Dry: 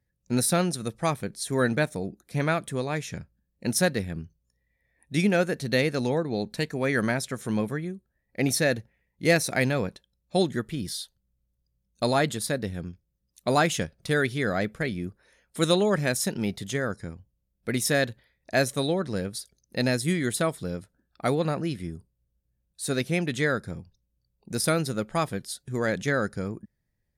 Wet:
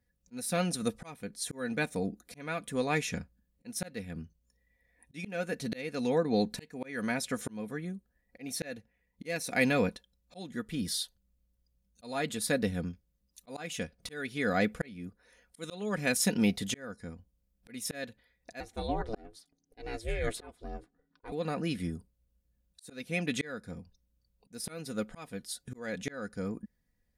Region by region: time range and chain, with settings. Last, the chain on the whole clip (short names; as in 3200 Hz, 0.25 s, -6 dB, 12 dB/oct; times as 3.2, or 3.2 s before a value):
18.6–21.32 LPF 2500 Hz 6 dB/oct + ring modulator 220 Hz
whole clip: comb 4.1 ms, depth 55%; dynamic EQ 2500 Hz, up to +5 dB, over -46 dBFS, Q 3.4; auto swell 0.653 s